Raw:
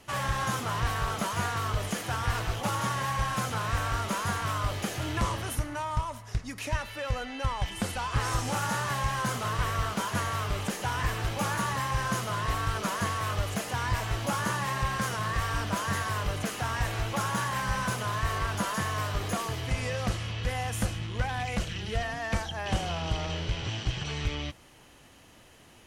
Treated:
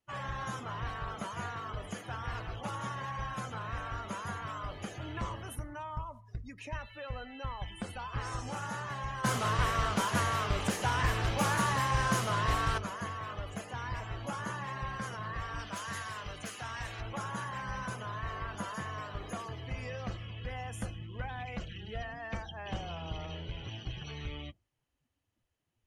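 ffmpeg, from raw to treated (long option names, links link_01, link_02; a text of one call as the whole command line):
ffmpeg -i in.wav -filter_complex "[0:a]asettb=1/sr,asplit=3[link_01][link_02][link_03];[link_01]atrim=end=15.594[link_04];[link_02]atrim=start=15.59:end=17.01,asetpts=PTS-STARTPTS,afade=type=in:duration=0.004:curve=qsin,afade=type=out:start_time=1.416:duration=0.004:curve=qsin,tiltshelf=frequency=1300:gain=-4[link_05];[link_03]atrim=start=17.006[link_06];[link_04][link_05]acrossfade=duration=0.004:curve1=hsin:curve2=qsin[link_07];[link_07][link_06]acrossfade=duration=0.004:curve1=qsin:curve2=hsin,asplit=3[link_08][link_09][link_10];[link_08]atrim=end=9.242[link_11];[link_09]atrim=start=9.238:end=12.782,asetpts=PTS-STARTPTS,volume=8.5dB[link_12];[link_10]atrim=start=12.778[link_13];[link_11][link_12]acrossfade=duration=0.004:curve1=hsin:curve2=hsin[link_14];[link_14][link_13]acrossfade=duration=0.004:curve1=hsin:curve2=hsin,afftdn=noise_reduction=24:noise_floor=-41,bandreject=frequency=50:width_type=h:width=6,bandreject=frequency=100:width_type=h:width=6,volume=-8dB" out.wav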